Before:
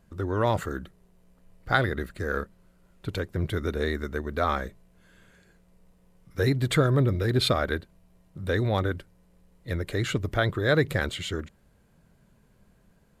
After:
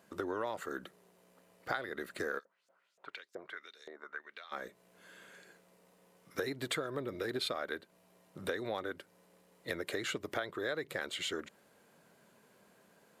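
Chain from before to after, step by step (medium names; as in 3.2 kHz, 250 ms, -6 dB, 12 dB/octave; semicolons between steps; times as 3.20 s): high-pass 350 Hz 12 dB/octave; compression 8:1, threshold -38 dBFS, peak gain reduction 20 dB; 2.38–4.51 s: LFO band-pass saw up 4.9 Hz -> 0.94 Hz 570–7000 Hz; trim +4 dB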